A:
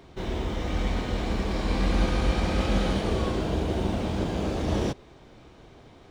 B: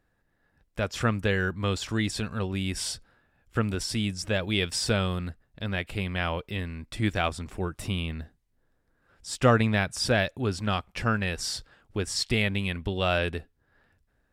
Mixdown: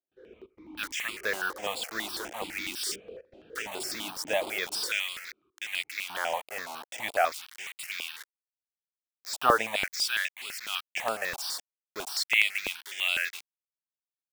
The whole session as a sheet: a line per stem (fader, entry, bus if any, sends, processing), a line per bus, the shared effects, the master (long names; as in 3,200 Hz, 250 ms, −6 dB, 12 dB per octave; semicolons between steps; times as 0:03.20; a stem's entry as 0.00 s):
−6.0 dB, 0.00 s, no send, echo send −20.5 dB, gate pattern ".xxx.xxx" 131 BPM −24 dB; formant filter swept between two vowels e-u 0.6 Hz
+1.0 dB, 0.00 s, no send, no echo send, bit-depth reduction 6 bits, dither none; auto-filter high-pass square 0.41 Hz 700–2,100 Hz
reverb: not used
echo: single-tap delay 90 ms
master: step-sequenced phaser 12 Hz 480–6,000 Hz